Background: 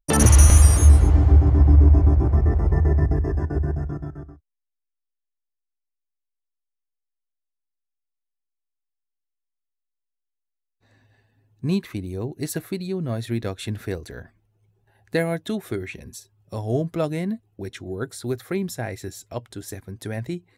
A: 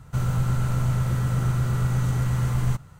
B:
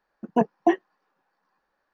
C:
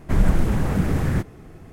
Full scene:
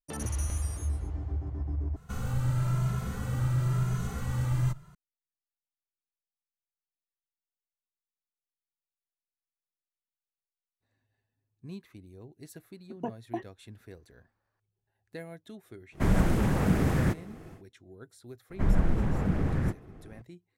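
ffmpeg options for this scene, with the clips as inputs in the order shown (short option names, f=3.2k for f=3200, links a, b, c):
-filter_complex "[3:a]asplit=2[a][b];[0:a]volume=-19.5dB[c];[1:a]asplit=2[d][e];[e]adelay=2.4,afreqshift=0.99[f];[d][f]amix=inputs=2:normalize=1[g];[2:a]acompressor=threshold=-29dB:ratio=2.5:attack=27:release=989:knee=1:detection=peak[h];[a]lowshelf=f=61:g=-9.5[i];[b]lowpass=f=2.2k:p=1[j];[c]asplit=2[k][l];[k]atrim=end=1.964[m];[g]atrim=end=2.99,asetpts=PTS-STARTPTS,volume=-3dB[n];[l]atrim=start=4.946[o];[h]atrim=end=1.93,asetpts=PTS-STARTPTS,volume=-7.5dB,afade=t=in:d=0.004:c=hsin,afade=t=out:st=1.926:d=0.004:c=hsin,adelay=12670[p];[i]atrim=end=1.72,asetpts=PTS-STARTPTS,volume=-2dB,afade=t=in:d=0.1,afade=t=out:st=1.62:d=0.1,adelay=15910[q];[j]atrim=end=1.72,asetpts=PTS-STARTPTS,volume=-6.5dB,afade=t=in:d=0.004:c=hsin,afade=t=out:st=1.716:d=0.004:c=hsin,adelay=18500[r];[m][n]acrossfade=d=0.004:c1=hsin:c2=hsin[s];[s][o]acrossfade=d=0.004:c1=hsin:c2=hsin[t];[t][p][q][r]amix=inputs=4:normalize=0"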